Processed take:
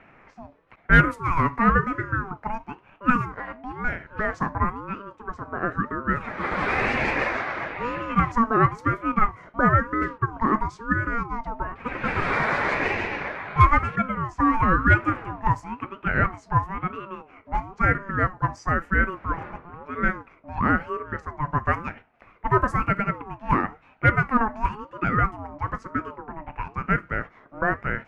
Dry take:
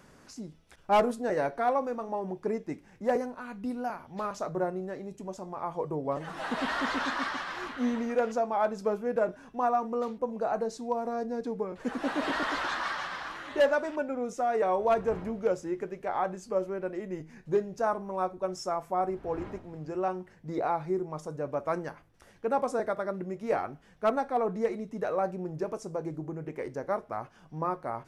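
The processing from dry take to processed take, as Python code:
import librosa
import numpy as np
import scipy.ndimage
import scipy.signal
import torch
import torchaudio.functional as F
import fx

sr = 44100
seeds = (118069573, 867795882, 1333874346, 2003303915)

y = fx.band_shelf(x, sr, hz=1000.0, db=11.5, octaves=2.4)
y = fx.env_lowpass(y, sr, base_hz=2100.0, full_db=-15.5)
y = fx.ring_lfo(y, sr, carrier_hz=610.0, swing_pct=30, hz=1.0)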